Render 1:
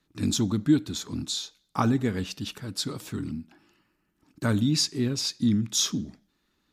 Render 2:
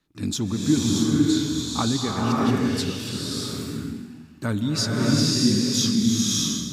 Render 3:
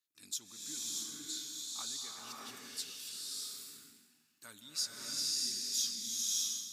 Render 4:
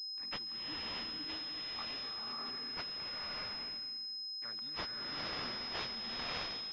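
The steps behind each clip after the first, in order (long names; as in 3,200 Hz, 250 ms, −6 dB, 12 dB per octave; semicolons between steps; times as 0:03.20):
slow-attack reverb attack 620 ms, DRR −5 dB; level −1 dB
first difference; level −7 dB
in parallel at −10 dB: bit-depth reduction 8 bits, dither none; on the sum: switching amplifier with a slow clock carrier 5,100 Hz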